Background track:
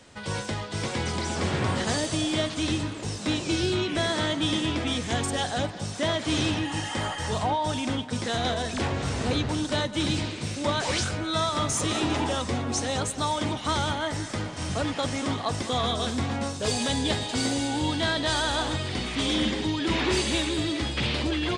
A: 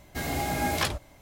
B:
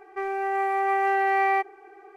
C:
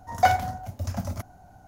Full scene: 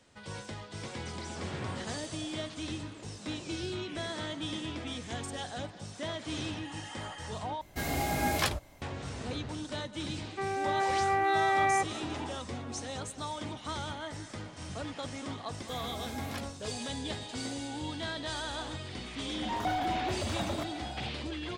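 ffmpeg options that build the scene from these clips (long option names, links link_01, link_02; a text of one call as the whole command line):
ffmpeg -i bed.wav -i cue0.wav -i cue1.wav -i cue2.wav -filter_complex "[1:a]asplit=2[link_01][link_02];[0:a]volume=-11dB[link_03];[3:a]asplit=2[link_04][link_05];[link_05]highpass=frequency=720:poles=1,volume=38dB,asoftclip=type=tanh:threshold=-7dB[link_06];[link_04][link_06]amix=inputs=2:normalize=0,lowpass=frequency=1200:poles=1,volume=-6dB[link_07];[link_03]asplit=2[link_08][link_09];[link_08]atrim=end=7.614[link_10];[link_01]atrim=end=1.21,asetpts=PTS-STARTPTS,volume=-2dB[link_11];[link_09]atrim=start=8.816[link_12];[2:a]atrim=end=2.16,asetpts=PTS-STARTPTS,volume=-4.5dB,afade=type=in:duration=0.004:curve=hsin,afade=type=out:start_time=2.156:duration=0.004:curve=hsin,adelay=10210[link_13];[link_02]atrim=end=1.21,asetpts=PTS-STARTPTS,volume=-15dB,afade=type=in:duration=0.004:curve=hsin,afade=type=out:start_time=1.206:duration=0.004:curve=hsin,adelay=15530[link_14];[link_07]atrim=end=1.67,asetpts=PTS-STARTPTS,volume=-17dB,afade=type=in:duration=0.004:curve=hsin,afade=type=out:start_time=1.666:duration=0.004:curve=hsin,adelay=19420[link_15];[link_10][link_11]acrossfade=duration=0.004:curve1=hsin:curve2=hsin[link_16];[link_16][link_12]acrossfade=duration=0.004:curve1=hsin:curve2=hsin[link_17];[link_17][link_13][link_14][link_15]amix=inputs=4:normalize=0" out.wav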